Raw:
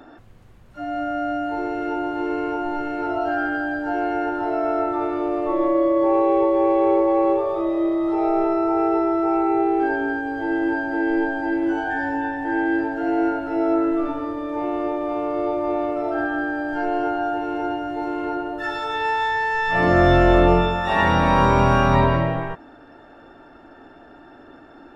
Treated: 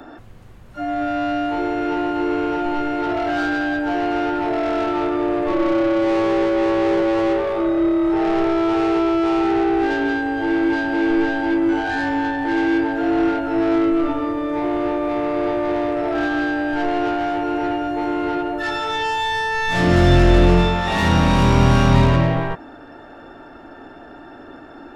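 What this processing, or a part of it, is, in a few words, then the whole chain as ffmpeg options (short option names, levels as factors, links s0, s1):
one-band saturation: -filter_complex "[0:a]acrossover=split=310|3000[s0][s1][s2];[s1]asoftclip=type=tanh:threshold=0.0473[s3];[s0][s3][s2]amix=inputs=3:normalize=0,volume=2"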